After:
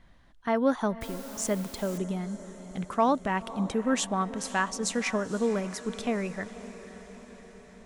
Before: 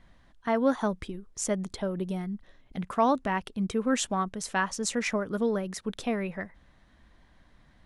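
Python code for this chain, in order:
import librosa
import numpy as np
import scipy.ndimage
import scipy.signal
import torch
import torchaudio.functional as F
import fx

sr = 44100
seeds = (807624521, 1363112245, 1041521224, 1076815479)

y = fx.echo_diffused(x, sr, ms=519, feedback_pct=62, wet_db=-15)
y = fx.quant_dither(y, sr, seeds[0], bits=8, dither='triangular', at=(1.01, 1.98))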